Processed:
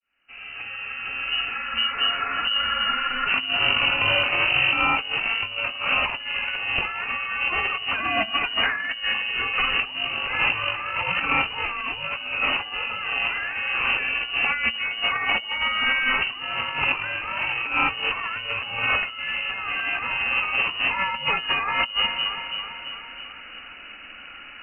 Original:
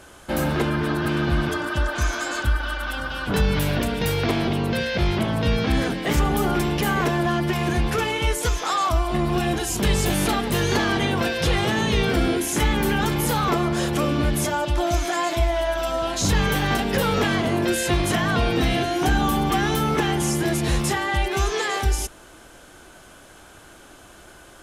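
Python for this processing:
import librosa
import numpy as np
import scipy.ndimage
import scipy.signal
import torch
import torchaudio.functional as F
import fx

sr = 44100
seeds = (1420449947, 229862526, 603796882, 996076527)

p1 = fx.fade_in_head(x, sr, length_s=5.0)
p2 = fx.dynamic_eq(p1, sr, hz=1800.0, q=2.3, threshold_db=-44.0, ratio=4.0, max_db=7)
p3 = fx.freq_invert(p2, sr, carrier_hz=2900)
p4 = fx.doubler(p3, sr, ms=47.0, db=-8.5)
p5 = p4 + fx.echo_feedback(p4, sr, ms=331, feedback_pct=57, wet_db=-13.5, dry=0)
y = fx.over_compress(p5, sr, threshold_db=-24.0, ratio=-0.5)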